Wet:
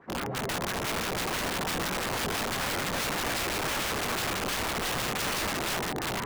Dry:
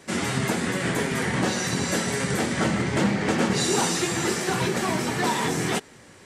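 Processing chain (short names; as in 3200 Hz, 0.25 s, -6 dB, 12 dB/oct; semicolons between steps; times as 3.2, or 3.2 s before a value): dark delay 0.396 s, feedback 74%, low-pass 3600 Hz, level -3.5 dB; LFO low-pass sine 6 Hz 530–1600 Hz; notch 590 Hz, Q 12; wrapped overs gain 18.5 dB; gain -7 dB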